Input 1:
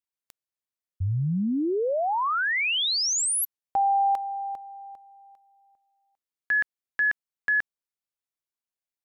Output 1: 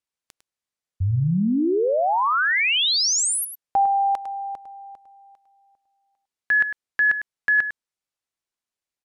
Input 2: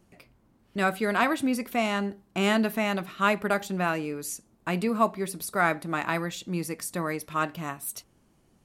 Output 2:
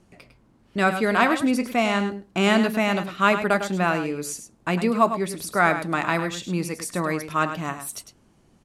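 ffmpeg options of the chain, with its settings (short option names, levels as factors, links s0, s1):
-af "lowpass=9700,aecho=1:1:103:0.316,volume=1.68"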